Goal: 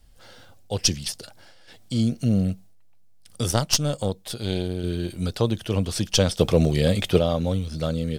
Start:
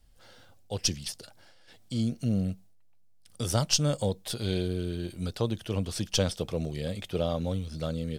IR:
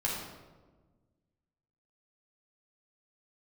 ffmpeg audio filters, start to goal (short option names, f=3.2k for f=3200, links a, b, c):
-filter_complex "[0:a]asettb=1/sr,asplit=3[a][b][c];[a]atrim=end=3.514[d];[b]atrim=start=3.51:end=4.84,asetpts=PTS-STARTPTS,afade=t=in:d=0.004:c=qsin,afade=t=out:st=1.326:d=0.004:c=qsin,aeval=exprs='0.335*(cos(1*acos(clip(val(0)/0.335,-1,1)))-cos(1*PI/2))+0.0531*(cos(3*acos(clip(val(0)/0.335,-1,1)))-cos(3*PI/2))+0.0188*(cos(4*acos(clip(val(0)/0.335,-1,1)))-cos(4*PI/2))':c=same[e];[c]atrim=start=4.836[f];[d][e]acrossfade=d=0.004:c1=hsin:c2=qsin[g];[g][f]acrossfade=d=0.004:c1=qsin:c2=hsin,asettb=1/sr,asplit=3[h][i][j];[h]atrim=end=6.394[k];[i]atrim=start=6.39:end=7.19,asetpts=PTS-STARTPTS,afade=t=in:d=0.004:c=qsin,afade=t=out:st=0.796:d=0.004:c=qsin,acontrast=68[l];[j]atrim=start=7.186[m];[k][l]acrossfade=d=0.004:c1=hsin:c2=qsin[n];[n][m]acrossfade=d=0.004:c1=qsin:c2=hsin,volume=6.5dB"